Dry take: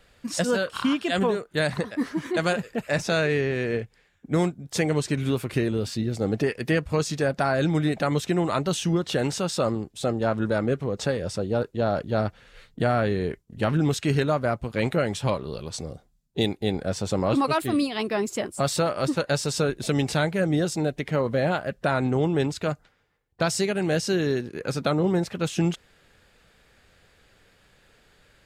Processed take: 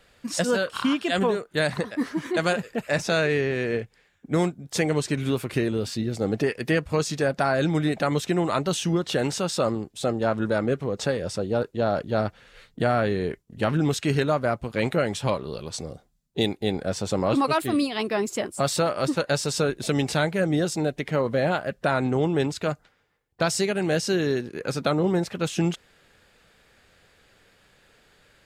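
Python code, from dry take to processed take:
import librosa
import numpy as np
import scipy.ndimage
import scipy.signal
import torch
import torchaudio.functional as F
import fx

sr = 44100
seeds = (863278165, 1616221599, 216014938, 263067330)

y = fx.low_shelf(x, sr, hz=120.0, db=-5.5)
y = y * librosa.db_to_amplitude(1.0)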